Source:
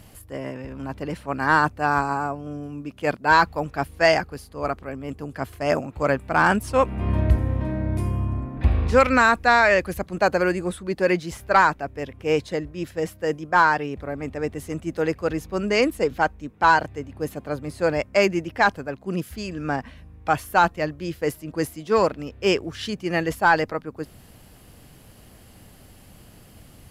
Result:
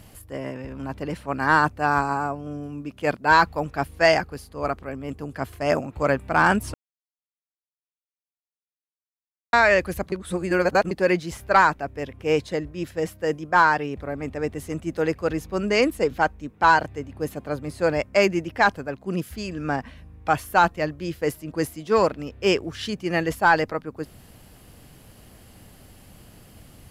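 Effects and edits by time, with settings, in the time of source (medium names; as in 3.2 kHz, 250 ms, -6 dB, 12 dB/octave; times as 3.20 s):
6.74–9.53 s: mute
10.12–10.91 s: reverse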